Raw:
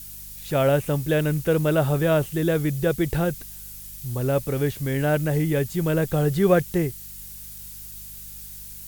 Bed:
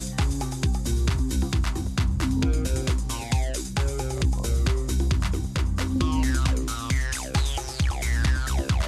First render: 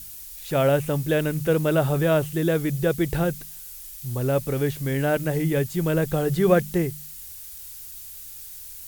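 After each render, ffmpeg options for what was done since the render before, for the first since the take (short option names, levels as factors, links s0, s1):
-af "bandreject=f=50:t=h:w=4,bandreject=f=100:t=h:w=4,bandreject=f=150:t=h:w=4,bandreject=f=200:t=h:w=4"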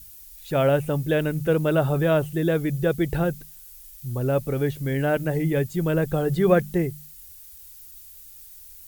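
-af "afftdn=nr=8:nf=-40"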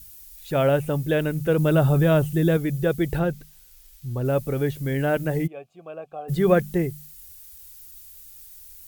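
-filter_complex "[0:a]asettb=1/sr,asplit=3[s0][s1][s2];[s0]atrim=end=1.584[s3];[s1]atrim=start=1.58:end=2.57,asetpts=PTS-STARTPTS,afade=t=in:d=0.004:c=qsin,afade=t=out:st=0.986:d=0.004:c=qsin,bass=f=250:g=6,treble=f=4000:g=3[s4];[s2]atrim=start=2.566[s5];[s3][s4]acrossfade=d=0.004:c1=hsin:c2=qsin[s6];[s6][s5]acrossfade=d=0.004:c1=qsin:c2=hsin,asettb=1/sr,asplit=3[s7][s8][s9];[s7]atrim=end=3.194[s10];[s8]atrim=start=3.19:end=4.25,asetpts=PTS-STARTPTS,afade=t=in:d=0.004:c=qsin,afade=t=out:st=1.056:d=0.004:c=qsin,acrossover=split=5800[s11][s12];[s12]acompressor=threshold=0.00355:ratio=4:attack=1:release=60[s13];[s11][s13]amix=inputs=2:normalize=0[s14];[s9]atrim=start=4.246[s15];[s10][s14]acrossfade=d=0.004:c1=hsin:c2=qsin[s16];[s16][s15]acrossfade=d=0.004:c1=qsin:c2=hsin,asplit=3[s17][s18][s19];[s17]afade=t=out:st=5.46:d=0.02[s20];[s18]asplit=3[s21][s22][s23];[s21]bandpass=f=730:t=q:w=8,volume=1[s24];[s22]bandpass=f=1090:t=q:w=8,volume=0.501[s25];[s23]bandpass=f=2440:t=q:w=8,volume=0.355[s26];[s24][s25][s26]amix=inputs=3:normalize=0,afade=t=in:st=5.46:d=0.02,afade=t=out:st=6.28:d=0.02[s27];[s19]afade=t=in:st=6.28:d=0.02[s28];[s20][s27][s28]amix=inputs=3:normalize=0"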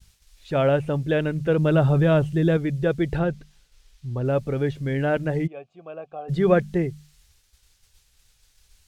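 -af "lowpass=5000,agate=range=0.0224:threshold=0.002:ratio=3:detection=peak"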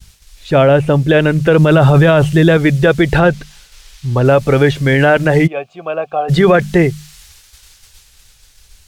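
-filter_complex "[0:a]acrossover=split=640[s0][s1];[s1]dynaudnorm=f=250:g=11:m=2.51[s2];[s0][s2]amix=inputs=2:normalize=0,alimiter=level_in=4.47:limit=0.891:release=50:level=0:latency=1"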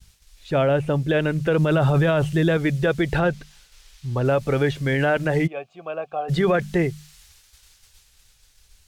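-af "volume=0.316"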